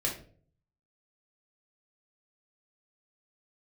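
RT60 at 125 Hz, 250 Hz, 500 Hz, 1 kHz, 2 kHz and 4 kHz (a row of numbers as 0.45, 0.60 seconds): 0.85, 0.60, 0.55, 0.40, 0.35, 0.30 seconds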